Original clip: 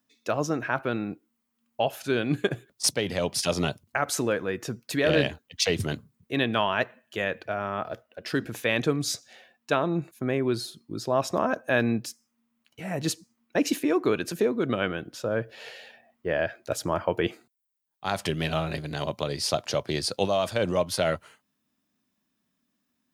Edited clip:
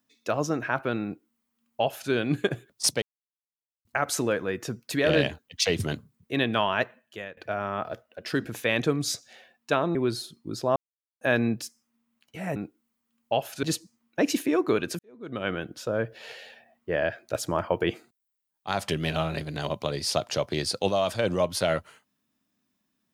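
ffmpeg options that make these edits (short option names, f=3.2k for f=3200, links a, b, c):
-filter_complex "[0:a]asplit=10[a][b][c][d][e][f][g][h][i][j];[a]atrim=end=3.02,asetpts=PTS-STARTPTS,afade=t=out:st=3.016:d=0.004:c=hsin[k];[b]atrim=start=3.02:end=3.85,asetpts=PTS-STARTPTS,volume=0[l];[c]atrim=start=3.85:end=7.37,asetpts=PTS-STARTPTS,afade=t=in:d=0.004:c=hsin,afade=t=out:st=2.96:d=0.56:silence=0.112202[m];[d]atrim=start=7.37:end=9.952,asetpts=PTS-STARTPTS,afade=t=in:d=0.004:c=hsin:silence=0.112202[n];[e]atrim=start=10.388:end=11.2,asetpts=PTS-STARTPTS,afade=t=out:st=0.808:d=0.004:c=hsin[o];[f]atrim=start=11.2:end=11.65,asetpts=PTS-STARTPTS,volume=0[p];[g]atrim=start=11.65:end=13.002,asetpts=PTS-STARTPTS,afade=t=in:d=0.004:c=hsin[q];[h]atrim=start=1.038:end=2.112[r];[i]atrim=start=12.998:end=14.36,asetpts=PTS-STARTPTS,afade=t=out:st=1.358:d=0.004:c=hsin[s];[j]atrim=start=14.36,asetpts=PTS-STARTPTS,afade=t=in:d=0.54:c=qua[t];[k][l][m][n]concat=n=4:v=0:a=1[u];[o][p][q]concat=n=3:v=0:a=1[v];[u][v]acrossfade=d=0.004:c1=hsin:c2=hsin[w];[w][r]acrossfade=d=0.004:c1=hsin:c2=hsin[x];[s][t]concat=n=2:v=0:a=1[y];[x][y]acrossfade=d=0.004:c1=hsin:c2=hsin"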